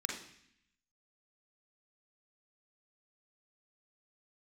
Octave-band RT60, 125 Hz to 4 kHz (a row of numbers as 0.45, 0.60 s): 0.95, 0.95, 0.65, 0.70, 0.90, 0.85 s